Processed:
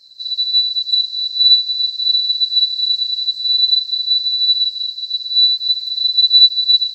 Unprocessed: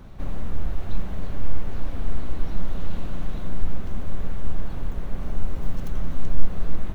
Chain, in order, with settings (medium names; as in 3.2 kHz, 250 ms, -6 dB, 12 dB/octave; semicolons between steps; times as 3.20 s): split-band scrambler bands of 4 kHz; chorus voices 2, 0.46 Hz, delay 15 ms, depth 2.2 ms; trim -1 dB